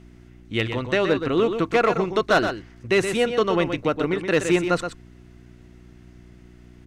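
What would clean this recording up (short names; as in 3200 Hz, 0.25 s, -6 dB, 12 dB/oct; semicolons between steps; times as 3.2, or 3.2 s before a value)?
de-hum 60.4 Hz, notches 6; inverse comb 0.123 s -8 dB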